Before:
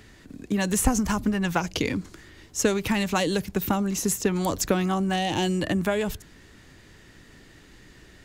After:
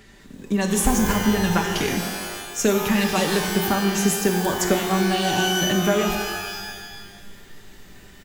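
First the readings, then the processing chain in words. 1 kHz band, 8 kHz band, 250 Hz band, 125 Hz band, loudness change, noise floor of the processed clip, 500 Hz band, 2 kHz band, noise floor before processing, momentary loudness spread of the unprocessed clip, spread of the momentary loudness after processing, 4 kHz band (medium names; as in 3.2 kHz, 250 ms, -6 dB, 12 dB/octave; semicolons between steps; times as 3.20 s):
+5.0 dB, +4.5 dB, +3.5 dB, +3.0 dB, +4.0 dB, -46 dBFS, +4.5 dB, +6.5 dB, -52 dBFS, 7 LU, 10 LU, +7.5 dB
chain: comb 5.1 ms, depth 51%; pitch-shifted reverb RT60 1.4 s, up +12 st, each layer -2 dB, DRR 4.5 dB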